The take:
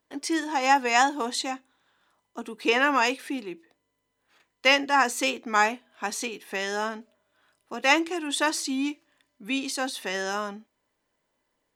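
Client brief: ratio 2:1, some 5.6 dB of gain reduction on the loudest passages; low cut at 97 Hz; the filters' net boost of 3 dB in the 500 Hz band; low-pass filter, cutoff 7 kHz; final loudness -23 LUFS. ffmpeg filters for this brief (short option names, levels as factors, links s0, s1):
-af "highpass=97,lowpass=7000,equalizer=f=500:t=o:g=3.5,acompressor=threshold=0.0631:ratio=2,volume=1.88"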